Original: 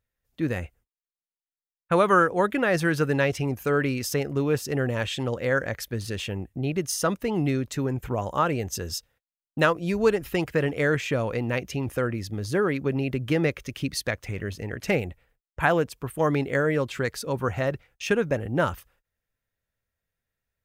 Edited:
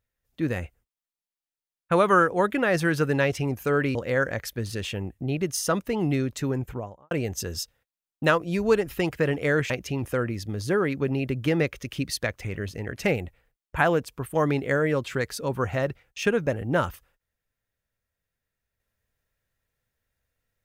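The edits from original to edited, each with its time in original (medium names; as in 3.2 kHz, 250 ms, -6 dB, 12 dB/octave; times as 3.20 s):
3.95–5.30 s: delete
7.87–8.46 s: studio fade out
11.05–11.54 s: delete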